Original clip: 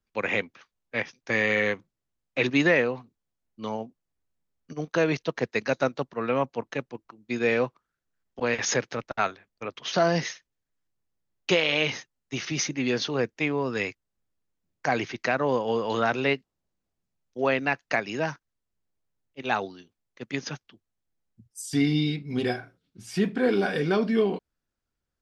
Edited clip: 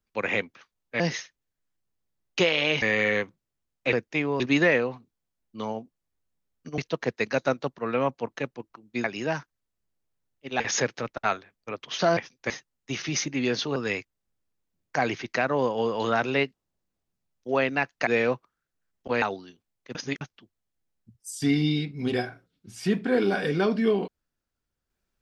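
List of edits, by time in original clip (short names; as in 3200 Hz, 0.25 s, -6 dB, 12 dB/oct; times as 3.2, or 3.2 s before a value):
1–1.33 swap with 10.11–11.93
4.82–5.13 cut
7.39–8.54 swap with 17.97–19.53
13.19–13.66 move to 2.44
20.26–20.52 reverse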